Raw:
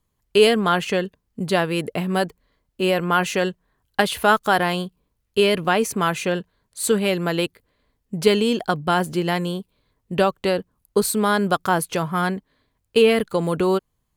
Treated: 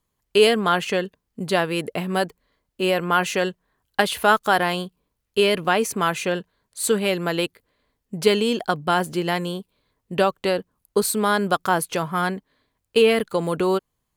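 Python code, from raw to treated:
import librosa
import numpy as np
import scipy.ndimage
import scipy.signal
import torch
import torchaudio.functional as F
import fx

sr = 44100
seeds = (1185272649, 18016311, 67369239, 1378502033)

y = fx.low_shelf(x, sr, hz=180.0, db=-6.5)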